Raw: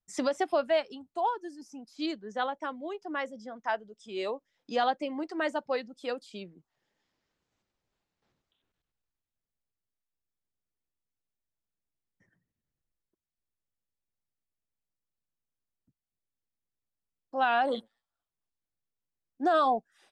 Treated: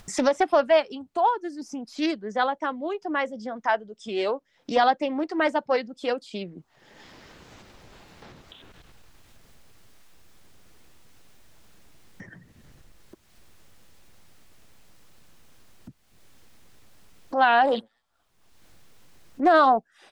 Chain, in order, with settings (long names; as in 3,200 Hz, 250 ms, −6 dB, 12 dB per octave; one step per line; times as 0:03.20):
high-shelf EQ 7,300 Hz −8.5 dB
upward compression, threshold −35 dBFS
highs frequency-modulated by the lows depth 0.24 ms
level +7.5 dB